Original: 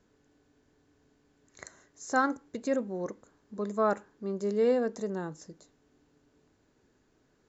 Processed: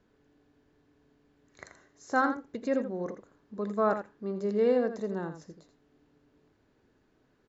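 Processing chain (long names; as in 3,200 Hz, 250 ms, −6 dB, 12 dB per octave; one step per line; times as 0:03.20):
low-pass filter 4,300 Hz 12 dB per octave
on a send: single-tap delay 83 ms −9.5 dB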